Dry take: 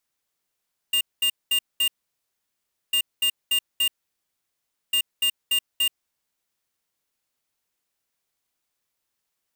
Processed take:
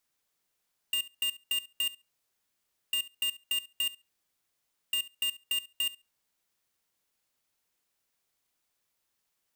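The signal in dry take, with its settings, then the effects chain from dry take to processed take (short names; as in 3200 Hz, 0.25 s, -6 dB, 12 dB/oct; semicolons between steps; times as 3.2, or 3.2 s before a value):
beep pattern square 2810 Hz, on 0.08 s, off 0.21 s, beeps 4, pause 1.05 s, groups 3, -21 dBFS
compressor 4:1, threshold -32 dBFS; flutter echo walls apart 11.9 m, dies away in 0.23 s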